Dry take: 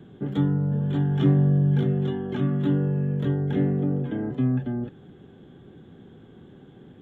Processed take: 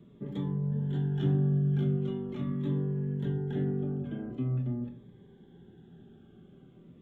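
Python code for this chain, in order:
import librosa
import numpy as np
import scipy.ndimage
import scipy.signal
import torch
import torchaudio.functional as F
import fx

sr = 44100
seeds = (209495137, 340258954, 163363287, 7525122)

y = fx.room_shoebox(x, sr, seeds[0], volume_m3=510.0, walls='furnished', distance_m=1.2)
y = fx.notch_cascade(y, sr, direction='falling', hz=0.43)
y = F.gain(torch.from_numpy(y), -8.5).numpy()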